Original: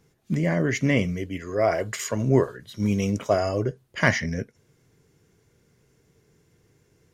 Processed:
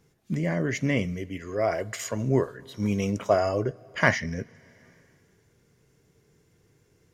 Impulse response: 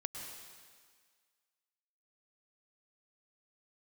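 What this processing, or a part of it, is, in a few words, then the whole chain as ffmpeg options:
ducked reverb: -filter_complex "[0:a]asplit=3[a][b][c];[1:a]atrim=start_sample=2205[d];[b][d]afir=irnorm=-1:irlink=0[e];[c]apad=whole_len=314552[f];[e][f]sidechaincompress=threshold=-41dB:ratio=4:attack=29:release=438,volume=-6.5dB[g];[a][g]amix=inputs=2:normalize=0,asettb=1/sr,asplit=3[h][i][j];[h]atrim=end=2.574[k];[i]atrim=start=2.57:end=4.15,asetpts=PTS-STARTPTS,afade=t=in:d=0.004:c=qsin,afade=t=out:st=1.576:d=0.004:c=qsin,equalizer=f=970:t=o:w=2.4:g=5[l];[j]atrim=start=4.146[m];[k][l]acrossfade=d=0.004:c1=hsin:c2=qsin[n];[n][m]acrossfade=d=0.004:c1=qsin:c2=hsin,volume=-4dB"

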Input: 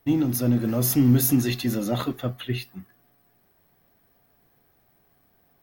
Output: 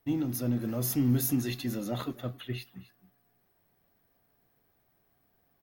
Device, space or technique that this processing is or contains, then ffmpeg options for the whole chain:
ducked delay: -filter_complex "[0:a]asplit=3[a][b][c];[b]adelay=266,volume=-9dB[d];[c]apad=whole_len=259835[e];[d][e]sidechaincompress=threshold=-34dB:ratio=8:attack=11:release=1040[f];[a][f]amix=inputs=2:normalize=0,volume=-8dB"

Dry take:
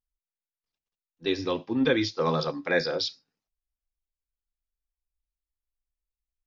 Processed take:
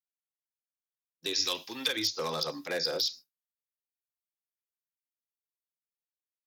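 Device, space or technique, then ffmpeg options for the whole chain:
FM broadcast chain: -filter_complex "[0:a]agate=range=-33dB:threshold=-42dB:ratio=3:detection=peak,highpass=49,dynaudnorm=f=510:g=5:m=6.5dB,acrossover=split=400|1100[a][b][c];[a]acompressor=threshold=-32dB:ratio=4[d];[b]acompressor=threshold=-21dB:ratio=4[e];[c]acompressor=threshold=-32dB:ratio=4[f];[d][e][f]amix=inputs=3:normalize=0,aemphasis=mode=production:type=75fm,alimiter=limit=-15.5dB:level=0:latency=1:release=63,asoftclip=type=hard:threshold=-19dB,lowpass=f=15k:w=0.5412,lowpass=f=15k:w=1.3066,aemphasis=mode=production:type=75fm,asettb=1/sr,asplit=3[g][h][i];[g]atrim=end=1.334[j];[h]atrim=start=1.33:end=1.97,asetpts=PTS-STARTPTS,afade=t=in:d=0.004:c=qsin,afade=t=out:st=0.636:d=0.004:c=qsin,tiltshelf=f=970:g=-7[k];[i]atrim=start=1.966[l];[j][k]acrossfade=d=0.004:c1=hsin:c2=qsin[m];[m][l]acrossfade=d=0.004:c1=qsin:c2=hsin,volume=-8dB"

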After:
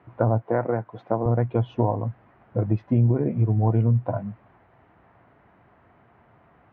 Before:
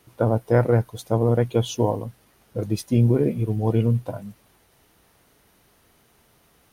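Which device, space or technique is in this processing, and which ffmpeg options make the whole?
bass amplifier: -filter_complex "[0:a]acompressor=threshold=-24dB:ratio=3,highpass=67,equalizer=f=110:t=q:w=4:g=5,equalizer=f=450:t=q:w=4:g=-4,equalizer=f=700:t=q:w=4:g=5,equalizer=f=1k:t=q:w=4:g=3,lowpass=f=2k:w=0.5412,lowpass=f=2k:w=1.3066,asettb=1/sr,asplit=3[a][b][c];[a]atrim=end=0.424[d];[b]atrim=start=0.42:end=1.26,asetpts=PTS-STARTPTS,afade=t=in:d=0.004:c=qsin,afade=t=out:st=0.836:d=0.004:c=qsin,highpass=210[e];[c]atrim=start=1.256[f];[d][e]acrossfade=d=0.004:c1=hsin:c2=qsin[g];[g][f]acrossfade=d=0.004:c1=qsin:c2=hsin,volume=4dB"

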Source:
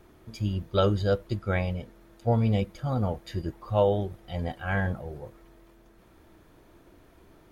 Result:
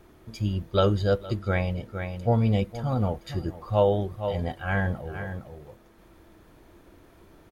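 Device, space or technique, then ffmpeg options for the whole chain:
ducked delay: -filter_complex "[0:a]asplit=3[a][b][c];[b]adelay=462,volume=-7dB[d];[c]apad=whole_len=351583[e];[d][e]sidechaincompress=threshold=-37dB:ratio=8:attack=5.5:release=245[f];[a][f]amix=inputs=2:normalize=0,volume=1.5dB"

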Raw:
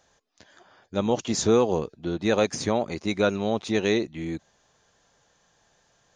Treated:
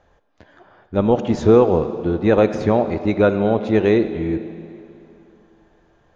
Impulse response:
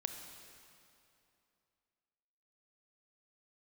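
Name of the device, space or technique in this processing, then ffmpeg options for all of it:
filtered reverb send: -filter_complex "[0:a]asplit=2[a][b];[b]highpass=270,lowpass=3.5k[c];[1:a]atrim=start_sample=2205[d];[c][d]afir=irnorm=-1:irlink=0,volume=3dB[e];[a][e]amix=inputs=2:normalize=0,aemphasis=mode=reproduction:type=riaa,volume=-1dB"

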